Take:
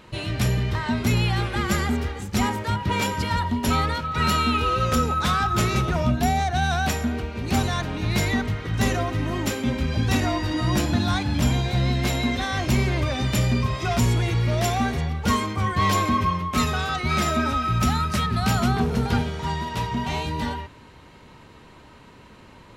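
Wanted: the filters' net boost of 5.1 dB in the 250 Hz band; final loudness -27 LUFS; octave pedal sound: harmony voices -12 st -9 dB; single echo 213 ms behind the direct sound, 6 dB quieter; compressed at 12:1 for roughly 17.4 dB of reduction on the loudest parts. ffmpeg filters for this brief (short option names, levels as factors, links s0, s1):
-filter_complex "[0:a]equalizer=f=250:t=o:g=6,acompressor=threshold=0.0251:ratio=12,aecho=1:1:213:0.501,asplit=2[s0][s1];[s1]asetrate=22050,aresample=44100,atempo=2,volume=0.355[s2];[s0][s2]amix=inputs=2:normalize=0,volume=2.51"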